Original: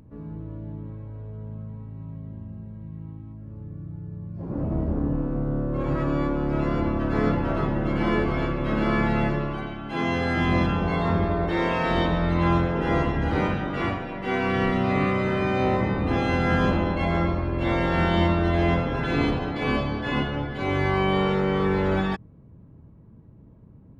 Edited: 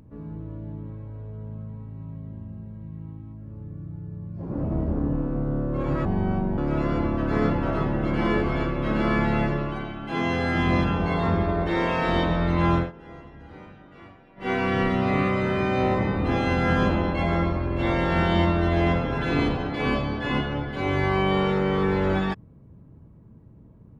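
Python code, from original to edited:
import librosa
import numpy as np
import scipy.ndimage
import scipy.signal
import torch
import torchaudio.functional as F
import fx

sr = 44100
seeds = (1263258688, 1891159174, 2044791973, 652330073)

y = fx.edit(x, sr, fx.speed_span(start_s=6.05, length_s=0.35, speed=0.66),
    fx.fade_down_up(start_s=12.61, length_s=1.7, db=-20.5, fade_s=0.13), tone=tone)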